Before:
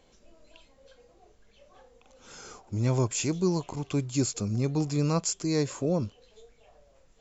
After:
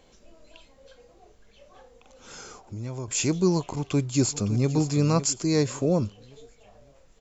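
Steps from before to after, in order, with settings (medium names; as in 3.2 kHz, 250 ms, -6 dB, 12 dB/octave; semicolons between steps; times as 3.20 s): 2.42–3.08 s: compression 2:1, threshold -46 dBFS, peak gain reduction 13.5 dB; 3.64–4.69 s: echo throw 560 ms, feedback 40%, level -13 dB; trim +4 dB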